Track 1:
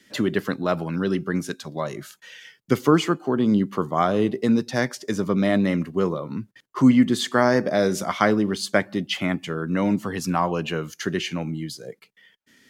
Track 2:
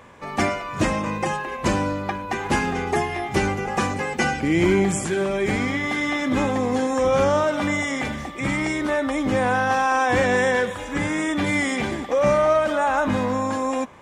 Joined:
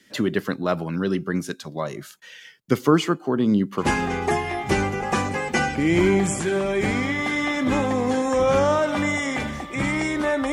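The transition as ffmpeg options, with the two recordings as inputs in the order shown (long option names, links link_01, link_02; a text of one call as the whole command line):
ffmpeg -i cue0.wav -i cue1.wav -filter_complex "[0:a]asettb=1/sr,asplit=3[link_01][link_02][link_03];[link_01]atrim=end=2.994[link_04];[link_02]atrim=start=2.99:end=3.87,asetpts=PTS-STARTPTS,afade=type=in:duration=0.004:curve=qsin,afade=type=out:start_time=0.876:duration=0.004:curve=qsin,aecho=1:1:787:0.119,atrim=end_sample=38808[link_05];[link_03]atrim=start=3.866[link_06];[link_04][link_05]acrossfade=duration=0.004:curve1=hsin:curve2=qsin[link_07];[link_07][link_06]acrossfade=duration=0.004:curve1=qsin:curve2=hsin,apad=whole_dur=10.52,atrim=end=10.52,atrim=end=3.87,asetpts=PTS-STARTPTS[link_08];[1:a]atrim=start=2.44:end=9.17,asetpts=PTS-STARTPTS[link_09];[link_08][link_09]acrossfade=duration=0.08:curve1=tri:curve2=tri" out.wav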